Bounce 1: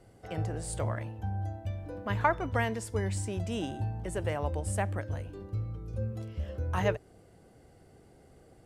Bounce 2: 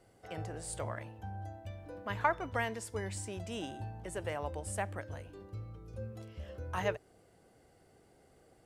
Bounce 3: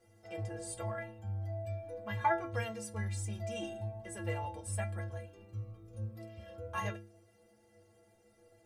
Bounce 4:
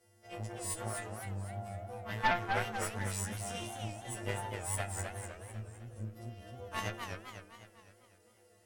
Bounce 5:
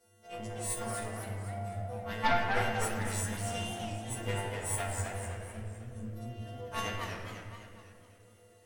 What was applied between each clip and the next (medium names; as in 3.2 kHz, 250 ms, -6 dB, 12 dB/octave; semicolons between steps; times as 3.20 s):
bass shelf 320 Hz -8 dB; trim -2.5 dB
inharmonic resonator 100 Hz, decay 0.65 s, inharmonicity 0.03; trim +12 dB
partials quantised in pitch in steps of 2 st; Chebyshev shaper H 4 -7 dB, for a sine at -18 dBFS; modulated delay 253 ms, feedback 49%, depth 195 cents, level -5 dB; trim -2.5 dB
simulated room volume 1400 m³, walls mixed, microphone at 1.7 m